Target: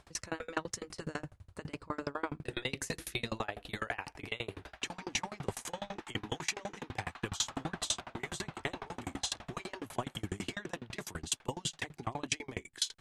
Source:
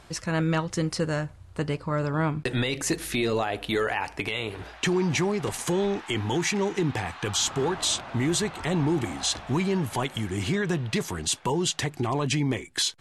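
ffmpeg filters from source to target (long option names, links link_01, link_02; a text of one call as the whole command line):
ffmpeg -i in.wav -af "afftfilt=real='re*lt(hypot(re,im),0.316)':imag='im*lt(hypot(re,im),0.316)':win_size=1024:overlap=0.75,aeval=exprs='val(0)*pow(10,-32*if(lt(mod(12*n/s,1),2*abs(12)/1000),1-mod(12*n/s,1)/(2*abs(12)/1000),(mod(12*n/s,1)-2*abs(12)/1000)/(1-2*abs(12)/1000))/20)':channel_layout=same" out.wav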